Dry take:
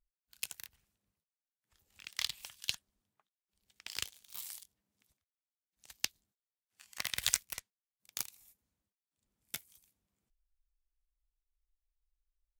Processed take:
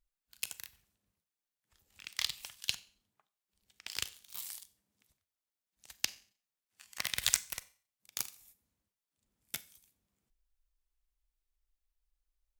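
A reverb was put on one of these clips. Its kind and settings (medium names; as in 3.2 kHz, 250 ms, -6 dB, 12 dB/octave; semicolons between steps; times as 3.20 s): Schroeder reverb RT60 0.42 s, combs from 30 ms, DRR 16 dB; trim +1.5 dB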